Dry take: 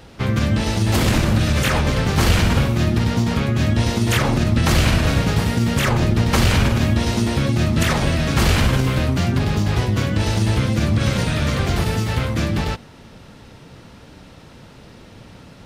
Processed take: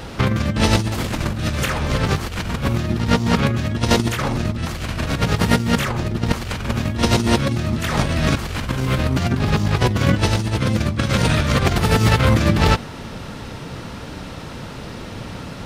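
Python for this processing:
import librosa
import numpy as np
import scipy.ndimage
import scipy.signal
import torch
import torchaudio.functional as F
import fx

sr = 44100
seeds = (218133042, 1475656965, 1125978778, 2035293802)

y = fx.peak_eq(x, sr, hz=1200.0, db=2.5, octaves=0.77)
y = fx.over_compress(y, sr, threshold_db=-22.0, ratio=-0.5)
y = F.gain(torch.from_numpy(y), 4.5).numpy()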